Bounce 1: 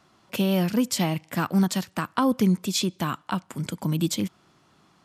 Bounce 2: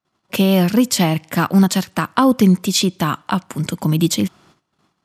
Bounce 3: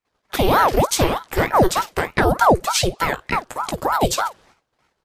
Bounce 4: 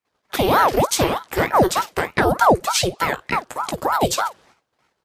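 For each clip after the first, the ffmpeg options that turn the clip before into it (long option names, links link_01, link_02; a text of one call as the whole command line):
ffmpeg -i in.wav -af "agate=range=-32dB:threshold=-57dB:ratio=16:detection=peak,volume=8.5dB" out.wav
ffmpeg -i in.wav -filter_complex "[0:a]asplit=2[link_01][link_02];[link_02]aecho=0:1:17|52:0.398|0.168[link_03];[link_01][link_03]amix=inputs=2:normalize=0,aeval=exprs='val(0)*sin(2*PI*670*n/s+670*0.75/3.3*sin(2*PI*3.3*n/s))':channel_layout=same" out.wav
ffmpeg -i in.wav -af "highpass=frequency=100:poles=1" out.wav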